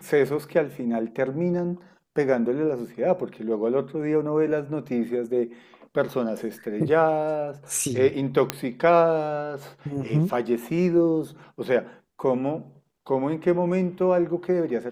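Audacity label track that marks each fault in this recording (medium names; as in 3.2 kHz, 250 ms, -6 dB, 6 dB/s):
8.500000	8.500000	pop -6 dBFS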